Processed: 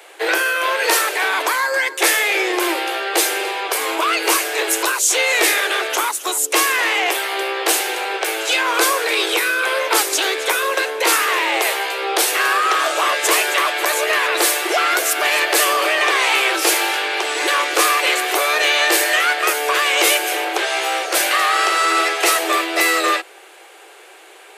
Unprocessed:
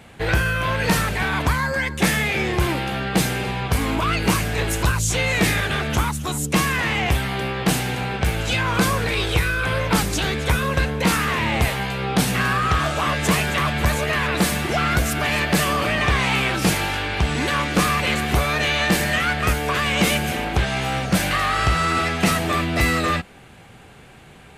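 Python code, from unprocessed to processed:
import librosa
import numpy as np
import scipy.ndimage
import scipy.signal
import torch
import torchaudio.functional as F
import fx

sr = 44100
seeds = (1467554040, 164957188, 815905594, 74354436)

y = scipy.signal.sosfilt(scipy.signal.butter(16, 330.0, 'highpass', fs=sr, output='sos'), x)
y = fx.high_shelf(y, sr, hz=5800.0, db=6.5)
y = y * librosa.db_to_amplitude(4.5)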